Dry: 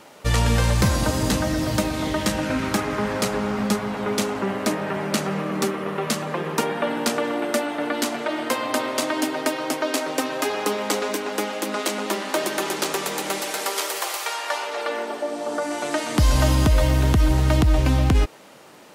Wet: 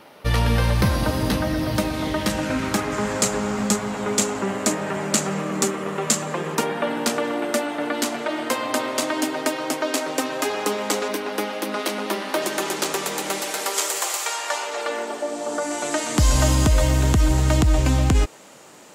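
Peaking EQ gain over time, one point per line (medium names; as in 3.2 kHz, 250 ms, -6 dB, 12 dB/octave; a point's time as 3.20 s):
peaking EQ 7.3 kHz 0.48 oct
-13.5 dB
from 1.76 s -5 dB
from 2.30 s +3.5 dB
from 2.92 s +14 dB
from 6.55 s +3 dB
from 11.08 s -6.5 dB
from 12.42 s +3 dB
from 13.74 s +10 dB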